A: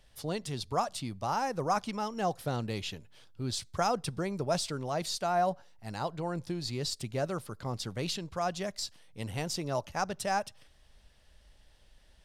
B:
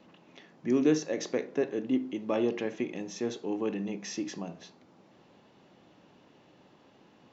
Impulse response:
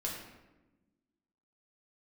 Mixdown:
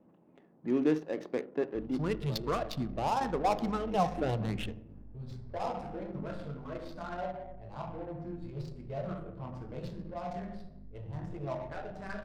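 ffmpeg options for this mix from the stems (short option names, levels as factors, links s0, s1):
-filter_complex "[0:a]aeval=exprs='val(0)+0.00398*(sin(2*PI*50*n/s)+sin(2*PI*2*50*n/s)/2+sin(2*PI*3*50*n/s)/3+sin(2*PI*4*50*n/s)/4+sin(2*PI*5*50*n/s)/5)':c=same,asplit=2[s0][s1];[s1]afreqshift=2.4[s2];[s0][s2]amix=inputs=2:normalize=1,adelay=1750,volume=1.33,asplit=2[s3][s4];[s4]volume=0.398[s5];[1:a]volume=2.11,afade=t=out:st=1.83:d=0.31:silence=0.237137,afade=t=in:st=3.66:d=0.3:silence=0.334965,asplit=2[s6][s7];[s7]apad=whole_len=617278[s8];[s3][s8]sidechaingate=range=0.0224:threshold=0.00141:ratio=16:detection=peak[s9];[2:a]atrim=start_sample=2205[s10];[s5][s10]afir=irnorm=-1:irlink=0[s11];[s9][s6][s11]amix=inputs=3:normalize=0,adynamicsmooth=sensitivity=7.5:basefreq=710"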